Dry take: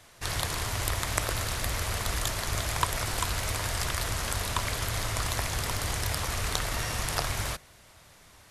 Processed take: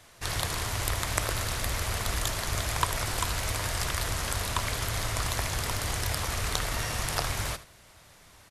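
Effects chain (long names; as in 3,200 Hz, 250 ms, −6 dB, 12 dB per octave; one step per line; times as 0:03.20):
single-tap delay 77 ms −15.5 dB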